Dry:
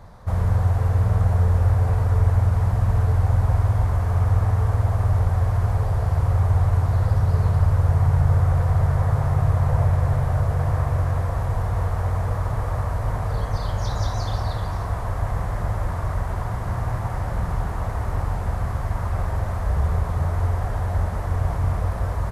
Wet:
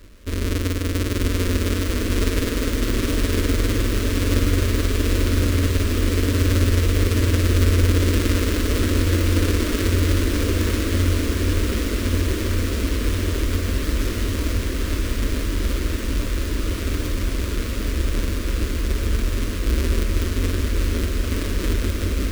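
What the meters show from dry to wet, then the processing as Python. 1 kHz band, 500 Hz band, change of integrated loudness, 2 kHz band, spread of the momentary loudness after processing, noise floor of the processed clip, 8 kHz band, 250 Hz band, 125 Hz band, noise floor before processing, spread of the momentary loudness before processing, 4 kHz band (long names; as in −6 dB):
−6.0 dB, +5.5 dB, 0.0 dB, +8.5 dB, 6 LU, −25 dBFS, can't be measured, +11.0 dB, −3.0 dB, −28 dBFS, 7 LU, +16.0 dB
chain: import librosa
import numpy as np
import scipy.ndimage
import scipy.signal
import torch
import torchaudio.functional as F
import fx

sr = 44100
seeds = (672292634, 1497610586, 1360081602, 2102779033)

y = fx.halfwave_hold(x, sr)
y = fx.fixed_phaser(y, sr, hz=330.0, stages=4)
y = fx.echo_diffused(y, sr, ms=973, feedback_pct=78, wet_db=-4)
y = y * librosa.db_to_amplitude(-3.0)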